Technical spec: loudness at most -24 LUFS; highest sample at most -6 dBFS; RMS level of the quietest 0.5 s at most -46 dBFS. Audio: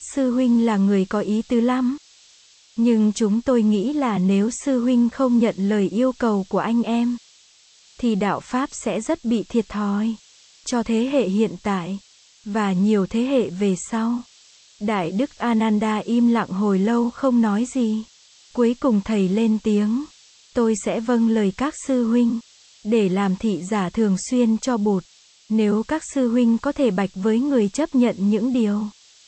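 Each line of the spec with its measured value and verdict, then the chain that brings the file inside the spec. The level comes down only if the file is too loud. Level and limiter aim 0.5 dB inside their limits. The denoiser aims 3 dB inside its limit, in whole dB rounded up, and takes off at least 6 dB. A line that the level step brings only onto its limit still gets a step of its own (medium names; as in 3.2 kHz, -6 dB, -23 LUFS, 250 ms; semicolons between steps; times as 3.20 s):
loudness -21.0 LUFS: fail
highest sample -7.0 dBFS: pass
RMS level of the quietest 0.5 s -53 dBFS: pass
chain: trim -3.5 dB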